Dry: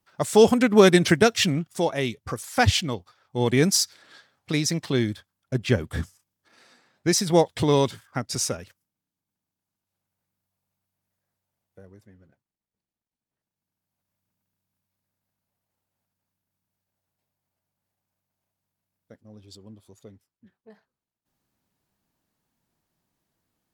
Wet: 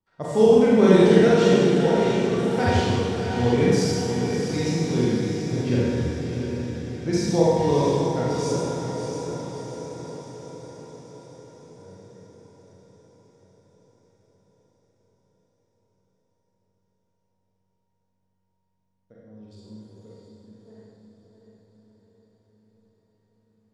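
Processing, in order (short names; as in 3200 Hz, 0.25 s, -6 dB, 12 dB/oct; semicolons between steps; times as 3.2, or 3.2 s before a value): LPF 7600 Hz 12 dB/oct; tilt shelf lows +5 dB; resonator 470 Hz, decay 0.52 s, mix 80%; diffused feedback echo 0.655 s, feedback 59%, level -6.5 dB; Schroeder reverb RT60 1.8 s, combs from 33 ms, DRR -7 dB; gain +3 dB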